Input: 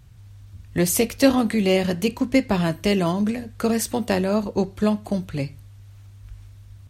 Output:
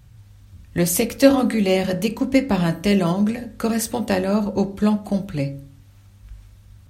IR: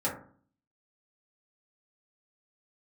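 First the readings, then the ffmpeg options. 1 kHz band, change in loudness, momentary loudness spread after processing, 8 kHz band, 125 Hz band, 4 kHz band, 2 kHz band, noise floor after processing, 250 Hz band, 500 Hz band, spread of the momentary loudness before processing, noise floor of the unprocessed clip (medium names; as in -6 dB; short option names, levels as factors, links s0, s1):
+1.0 dB, +1.5 dB, 10 LU, +1.0 dB, +2.0 dB, 0.0 dB, +0.5 dB, -49 dBFS, +2.0 dB, +1.5 dB, 8 LU, -45 dBFS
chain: -filter_complex "[0:a]asplit=2[s0][s1];[1:a]atrim=start_sample=2205,highshelf=f=11000:g=11.5[s2];[s1][s2]afir=irnorm=-1:irlink=0,volume=0.188[s3];[s0][s3]amix=inputs=2:normalize=0,volume=0.891"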